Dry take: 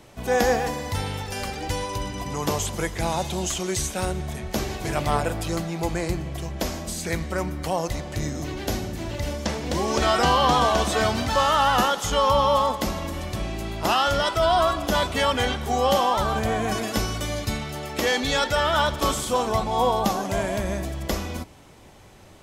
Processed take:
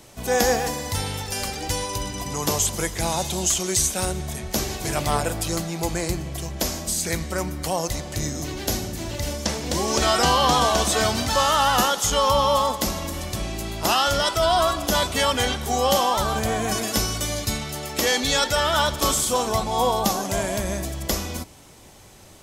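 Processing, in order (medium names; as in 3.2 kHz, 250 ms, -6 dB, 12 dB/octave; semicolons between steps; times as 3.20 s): tone controls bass 0 dB, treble +9 dB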